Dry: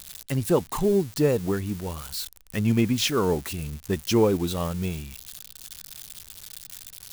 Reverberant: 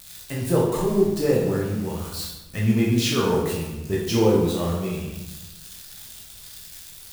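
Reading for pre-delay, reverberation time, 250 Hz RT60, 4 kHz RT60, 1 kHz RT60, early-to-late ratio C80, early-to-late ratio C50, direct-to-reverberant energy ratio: 12 ms, 1.1 s, 1.4 s, 0.75 s, 1.0 s, 4.5 dB, 1.5 dB, −4.5 dB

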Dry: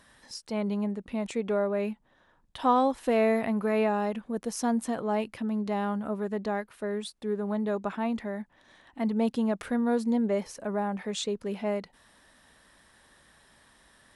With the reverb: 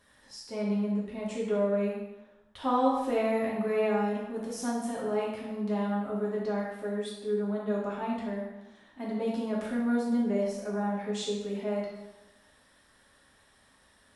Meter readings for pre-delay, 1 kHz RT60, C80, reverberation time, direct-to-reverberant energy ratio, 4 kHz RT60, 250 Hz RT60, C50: 3 ms, 0.95 s, 4.0 dB, 1.0 s, −5.5 dB, 0.85 s, 1.0 s, 1.5 dB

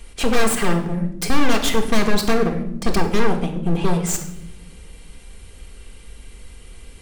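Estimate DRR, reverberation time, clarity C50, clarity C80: 2.5 dB, non-exponential decay, 9.5 dB, 12.5 dB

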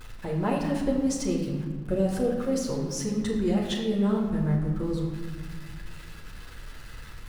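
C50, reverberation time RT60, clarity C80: 4.0 dB, 1.6 s, 5.5 dB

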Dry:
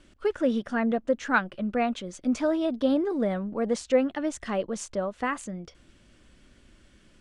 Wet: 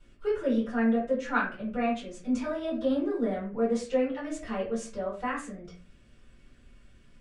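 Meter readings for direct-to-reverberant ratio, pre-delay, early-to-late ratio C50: −8.0 dB, 3 ms, 6.5 dB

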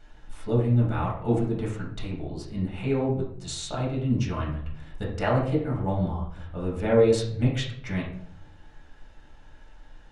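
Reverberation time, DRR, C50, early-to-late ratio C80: 0.65 s, −5.5 dB, 4.5 dB, 8.5 dB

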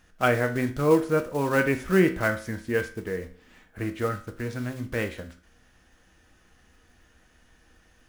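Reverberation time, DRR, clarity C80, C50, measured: 0.45 s, 5.5 dB, 17.5 dB, 13.0 dB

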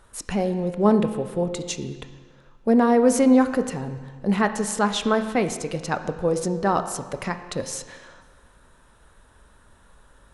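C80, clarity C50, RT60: 12.0 dB, 11.0 dB, 1.5 s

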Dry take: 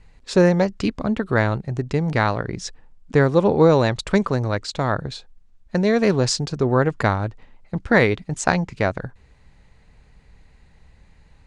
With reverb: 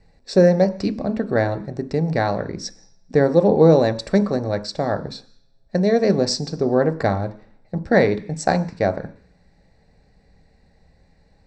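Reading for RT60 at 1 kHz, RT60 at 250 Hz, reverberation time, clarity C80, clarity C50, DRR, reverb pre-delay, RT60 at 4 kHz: 0.50 s, 0.50 s, 0.50 s, 19.5 dB, 16.5 dB, 9.5 dB, 3 ms, 0.85 s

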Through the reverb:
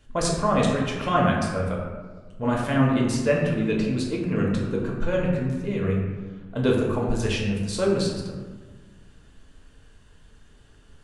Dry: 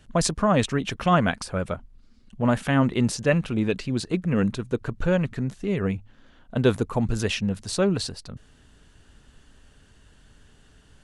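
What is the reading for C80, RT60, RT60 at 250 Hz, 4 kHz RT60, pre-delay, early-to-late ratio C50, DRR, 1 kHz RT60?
4.0 dB, 1.4 s, 1.8 s, 0.75 s, 3 ms, 2.0 dB, −3.0 dB, 1.3 s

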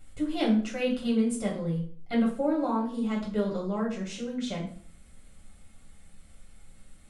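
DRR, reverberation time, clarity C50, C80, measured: −5.0 dB, 0.50 s, 7.0 dB, 11.0 dB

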